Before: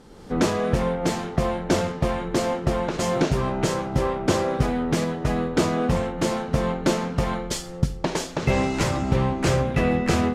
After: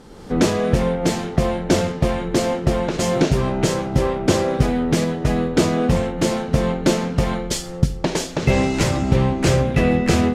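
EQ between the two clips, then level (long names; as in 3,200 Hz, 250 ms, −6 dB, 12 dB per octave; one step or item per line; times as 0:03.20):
dynamic equaliser 1,100 Hz, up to −5 dB, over −41 dBFS, Q 1.1
+5.0 dB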